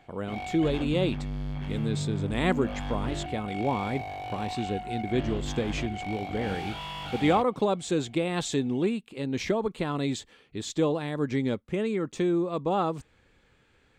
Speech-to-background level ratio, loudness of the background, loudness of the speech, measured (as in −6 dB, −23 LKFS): 6.0 dB, −35.5 LKFS, −29.5 LKFS